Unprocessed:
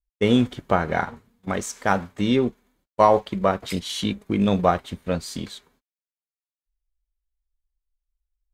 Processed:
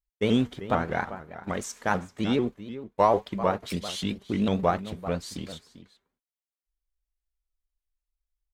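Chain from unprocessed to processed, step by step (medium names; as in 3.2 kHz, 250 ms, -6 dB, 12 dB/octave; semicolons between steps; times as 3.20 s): echo from a far wall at 67 m, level -13 dB; vibrato with a chosen wave saw up 6.7 Hz, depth 160 cents; trim -5 dB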